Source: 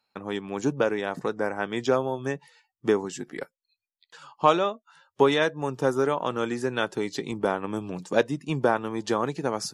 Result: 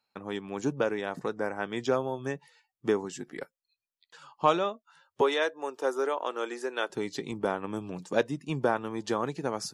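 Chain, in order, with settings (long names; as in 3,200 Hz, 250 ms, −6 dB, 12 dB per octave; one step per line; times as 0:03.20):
0:05.21–0:06.90: high-pass filter 340 Hz 24 dB per octave
level −4 dB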